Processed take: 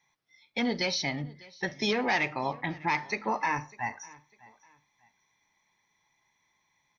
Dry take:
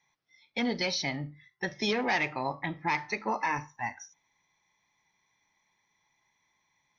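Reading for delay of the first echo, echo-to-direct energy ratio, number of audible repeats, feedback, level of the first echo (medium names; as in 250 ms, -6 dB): 600 ms, -22.0 dB, 2, 31%, -22.5 dB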